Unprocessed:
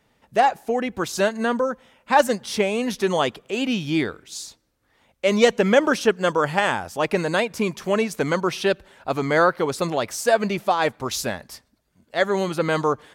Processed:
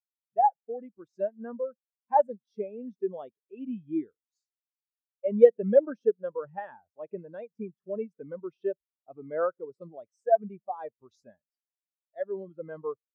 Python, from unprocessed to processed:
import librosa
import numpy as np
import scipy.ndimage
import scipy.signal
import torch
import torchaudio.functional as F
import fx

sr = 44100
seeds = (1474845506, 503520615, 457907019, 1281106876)

y = fx.spectral_expand(x, sr, expansion=2.5)